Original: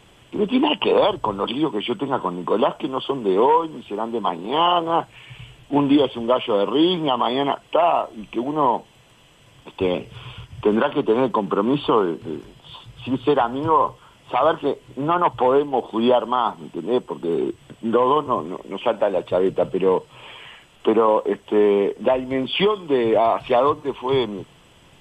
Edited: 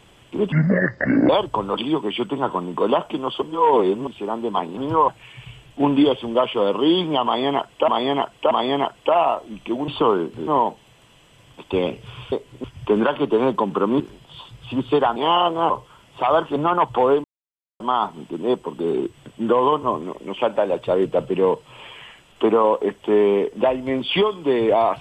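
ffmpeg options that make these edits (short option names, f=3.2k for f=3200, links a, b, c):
-filter_complex "[0:a]asplit=19[a][b][c][d][e][f][g][h][i][j][k][l][m][n][o][p][q][r][s];[a]atrim=end=0.524[t];[b]atrim=start=0.52:end=0.99,asetpts=PTS-STARTPTS,asetrate=26901,aresample=44100[u];[c]atrim=start=0.986:end=3.122[v];[d]atrim=start=3.118:end=3.772,asetpts=PTS-STARTPTS,areverse[w];[e]atrim=start=3.768:end=4.472[x];[f]atrim=start=13.508:end=13.822[y];[g]atrim=start=5.008:end=7.812[z];[h]atrim=start=7.178:end=7.812[aa];[i]atrim=start=7.178:end=8.552[ab];[j]atrim=start=11.758:end=12.352[ac];[k]atrim=start=8.548:end=10.402[ad];[l]atrim=start=14.678:end=15.002[ae];[m]atrim=start=10.398:end=11.762[af];[n]atrim=start=12.348:end=13.512[ag];[o]atrim=start=4.468:end=5.012[ah];[p]atrim=start=13.818:end=14.682[ai];[q]atrim=start=14.998:end=15.68,asetpts=PTS-STARTPTS,afade=t=out:st=0.678:d=0.004:c=hsin[aj];[r]atrim=start=15.68:end=16.24,asetpts=PTS-STARTPTS,volume=0[ak];[s]atrim=start=16.24,asetpts=PTS-STARTPTS,afade=t=in:d=0.004:c=hsin[al];[t][u]acrossfade=d=0.004:c1=hsin:c2=hsin[am];[am][v]acrossfade=d=0.004:c1=hsin:c2=hsin[an];[an][w]acrossfade=d=0.004:c1=hsin:c2=hsin[ao];[ao][x]acrossfade=d=0.004:c1=hsin:c2=hsin[ap];[ap][y]acrossfade=d=0.004:c1=hsin:c2=hsin[aq];[aq][z]acrossfade=d=0.004:c1=hsin:c2=hsin[ar];[ar][aa]acrossfade=d=0.004:c1=hsin:c2=hsin[as];[as][ab]acrossfade=d=0.004:c1=hsin:c2=hsin[at];[at][ac]acrossfade=d=0.004:c1=hsin:c2=hsin[au];[au][ad]acrossfade=d=0.004:c1=hsin:c2=hsin[av];[av][ae]acrossfade=d=0.004:c1=hsin:c2=hsin[aw];[aw][af]acrossfade=d=0.004:c1=hsin:c2=hsin[ax];[ax][ag]acrossfade=d=0.004:c1=hsin:c2=hsin[ay];[ay][ah]acrossfade=d=0.004:c1=hsin:c2=hsin[az];[az][ai]acrossfade=d=0.004:c1=hsin:c2=hsin[ba];[aj][ak][al]concat=n=3:v=0:a=1[bb];[ba][bb]acrossfade=d=0.004:c1=hsin:c2=hsin"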